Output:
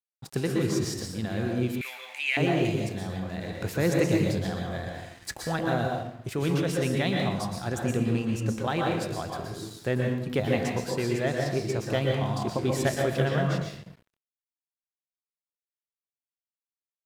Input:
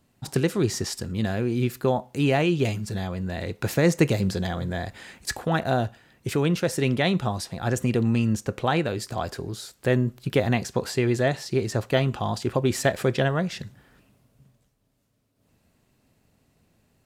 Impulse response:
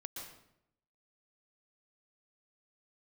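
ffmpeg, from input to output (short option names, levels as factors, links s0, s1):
-filter_complex "[1:a]atrim=start_sample=2205[s0];[0:a][s0]afir=irnorm=-1:irlink=0,aeval=exprs='sgn(val(0))*max(abs(val(0))-0.00335,0)':c=same,asettb=1/sr,asplit=3[s1][s2][s3];[s1]atrim=end=1.814[s4];[s2]atrim=start=1.81:end=2.37,asetpts=PTS-STARTPTS,afade=t=in:d=0.004:c=qsin,afade=t=out:st=0.556:d=0.004:c=qsin,highpass=f=2200:t=q:w=6.1[s5];[s3]atrim=start=2.366[s6];[s4][s5]acrossfade=d=0.004:c1=hsin:c2=qsin[s7];[s7][s6]acrossfade=d=0.004:c1=qsin:c2=hsin"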